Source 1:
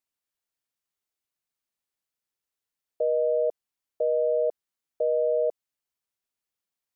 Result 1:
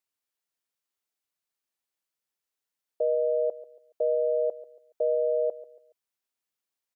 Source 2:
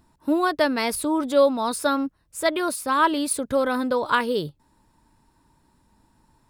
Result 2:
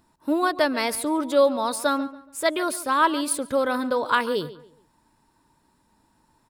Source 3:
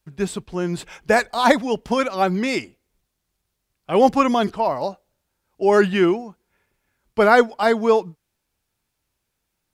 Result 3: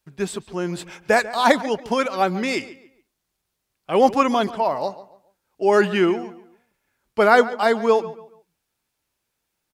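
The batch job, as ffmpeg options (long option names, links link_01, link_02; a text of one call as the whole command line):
ffmpeg -i in.wav -filter_complex "[0:a]lowshelf=frequency=150:gain=-9,asplit=2[link_01][link_02];[link_02]adelay=141,lowpass=frequency=3500:poles=1,volume=-16dB,asplit=2[link_03][link_04];[link_04]adelay=141,lowpass=frequency=3500:poles=1,volume=0.32,asplit=2[link_05][link_06];[link_06]adelay=141,lowpass=frequency=3500:poles=1,volume=0.32[link_07];[link_01][link_03][link_05][link_07]amix=inputs=4:normalize=0" out.wav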